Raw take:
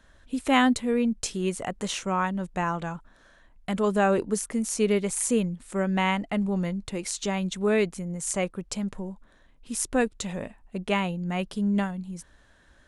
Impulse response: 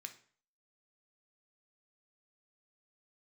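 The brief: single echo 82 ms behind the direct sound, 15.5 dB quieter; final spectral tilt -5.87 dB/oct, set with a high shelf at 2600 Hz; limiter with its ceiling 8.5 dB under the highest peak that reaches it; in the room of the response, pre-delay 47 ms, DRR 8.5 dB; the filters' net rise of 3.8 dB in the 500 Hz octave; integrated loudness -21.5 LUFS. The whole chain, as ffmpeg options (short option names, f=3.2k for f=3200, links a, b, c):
-filter_complex "[0:a]equalizer=f=500:t=o:g=5,highshelf=f=2.6k:g=-7.5,alimiter=limit=-16dB:level=0:latency=1,aecho=1:1:82:0.168,asplit=2[a][b];[1:a]atrim=start_sample=2205,adelay=47[c];[b][c]afir=irnorm=-1:irlink=0,volume=-4dB[d];[a][d]amix=inputs=2:normalize=0,volume=6dB"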